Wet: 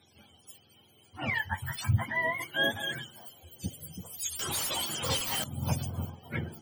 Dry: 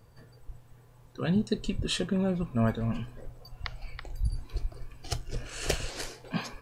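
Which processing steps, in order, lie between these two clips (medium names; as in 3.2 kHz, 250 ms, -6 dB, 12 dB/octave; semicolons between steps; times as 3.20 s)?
spectrum inverted on a logarithmic axis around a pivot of 610 Hz; 4.39–5.44 s: overdrive pedal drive 34 dB, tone 5 kHz, clips at -20.5 dBFS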